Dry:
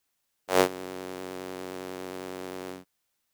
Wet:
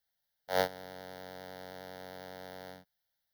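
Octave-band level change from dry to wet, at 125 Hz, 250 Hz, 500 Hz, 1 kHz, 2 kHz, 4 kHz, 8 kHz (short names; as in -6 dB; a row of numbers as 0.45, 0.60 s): -6.0, -14.0, -7.5, -6.0, -5.5, -5.5, -12.5 dB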